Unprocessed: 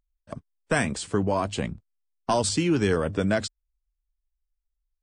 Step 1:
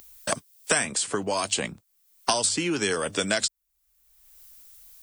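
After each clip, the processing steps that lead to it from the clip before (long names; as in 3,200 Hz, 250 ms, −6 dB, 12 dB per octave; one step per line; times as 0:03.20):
RIAA equalisation recording
multiband upward and downward compressor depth 100%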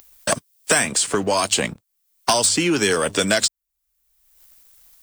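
leveller curve on the samples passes 2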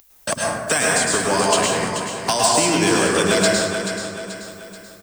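on a send: repeating echo 433 ms, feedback 44%, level −9 dB
on the sum: dense smooth reverb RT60 1.7 s, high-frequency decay 0.35×, pre-delay 95 ms, DRR −4 dB
level −3 dB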